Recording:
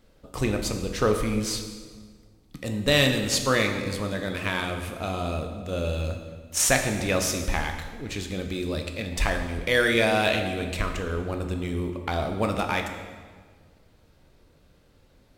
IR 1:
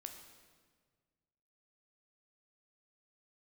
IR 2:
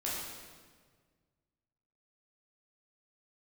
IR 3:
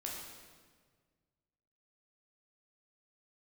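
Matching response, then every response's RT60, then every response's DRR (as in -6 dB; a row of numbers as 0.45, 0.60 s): 1; 1.6, 1.6, 1.6 s; 4.5, -7.0, -3.0 dB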